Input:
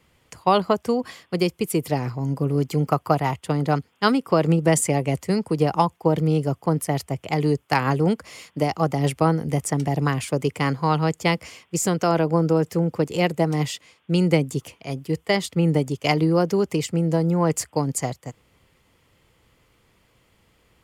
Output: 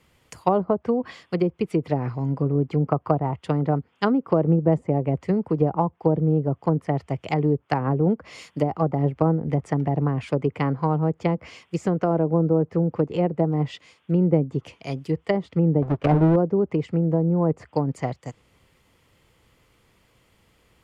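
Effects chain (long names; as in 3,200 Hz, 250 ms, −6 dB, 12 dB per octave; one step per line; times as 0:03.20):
0:15.82–0:16.36: each half-wave held at its own peak
treble cut that deepens with the level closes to 710 Hz, closed at −17 dBFS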